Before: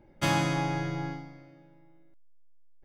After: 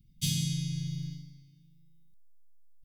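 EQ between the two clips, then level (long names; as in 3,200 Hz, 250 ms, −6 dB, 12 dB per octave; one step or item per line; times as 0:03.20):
elliptic band-stop filter 180–3,400 Hz, stop band 60 dB
high-shelf EQ 6,600 Hz +10.5 dB
0.0 dB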